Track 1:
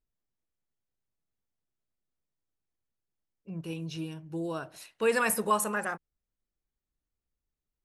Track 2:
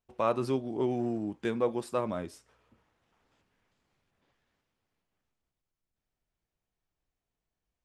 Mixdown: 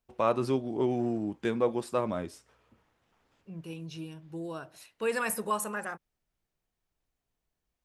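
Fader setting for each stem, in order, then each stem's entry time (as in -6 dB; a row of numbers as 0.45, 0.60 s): -4.0, +1.5 dB; 0.00, 0.00 s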